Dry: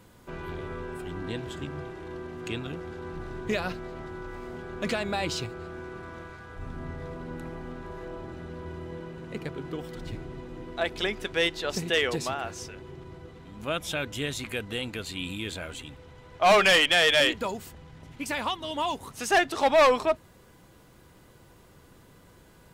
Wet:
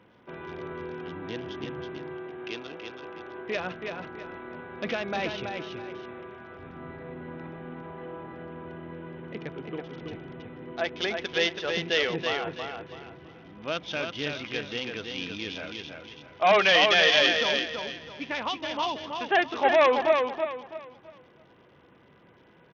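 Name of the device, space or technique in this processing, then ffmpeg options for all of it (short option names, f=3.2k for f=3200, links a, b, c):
Bluetooth headset: -filter_complex "[0:a]asettb=1/sr,asplit=3[a][b][c];[a]atrim=end=2.104[d];[b]atrim=start=2.1:end=3.55,asetpts=PTS-STARTPTS,afade=t=in:d=0.004:c=qsin,afade=t=out:st=1.446:d=0.004:c=qsin,bass=f=250:g=-12,treble=f=4k:g=-2[e];[c]atrim=start=3.546[f];[d][e]acrossfade=d=0.004:c1=hsin:c2=qsin[g];[g][f]acrossfade=d=0.004:c1=qsin:c2=hsin,highpass=f=99:p=1,highpass=f=180:p=1,equalizer=f=1.2k:w=1.6:g=-2,aecho=1:1:328|656|984|1312:0.562|0.174|0.054|0.0168,aresample=8000,aresample=44100" -ar 48000 -c:a sbc -b:a 64k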